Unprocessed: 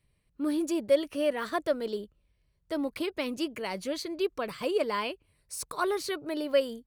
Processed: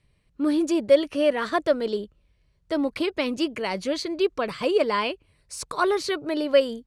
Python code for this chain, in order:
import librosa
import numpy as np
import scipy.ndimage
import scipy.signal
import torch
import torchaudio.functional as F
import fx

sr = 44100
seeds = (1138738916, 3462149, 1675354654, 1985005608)

y = scipy.signal.sosfilt(scipy.signal.butter(2, 7400.0, 'lowpass', fs=sr, output='sos'), x)
y = y * 10.0 ** (6.5 / 20.0)